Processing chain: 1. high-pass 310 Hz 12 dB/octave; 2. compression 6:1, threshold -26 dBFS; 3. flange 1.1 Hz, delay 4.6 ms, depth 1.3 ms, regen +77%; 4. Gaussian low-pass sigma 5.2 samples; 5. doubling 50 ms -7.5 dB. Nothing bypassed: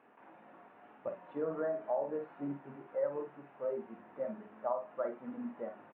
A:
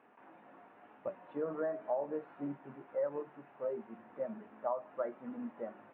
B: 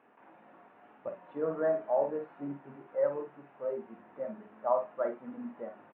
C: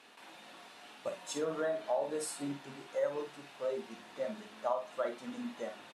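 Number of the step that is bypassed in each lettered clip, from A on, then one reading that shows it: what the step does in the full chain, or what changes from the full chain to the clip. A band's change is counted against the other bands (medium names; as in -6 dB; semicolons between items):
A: 5, momentary loudness spread change +2 LU; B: 2, crest factor change +2.5 dB; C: 4, 2 kHz band +7.0 dB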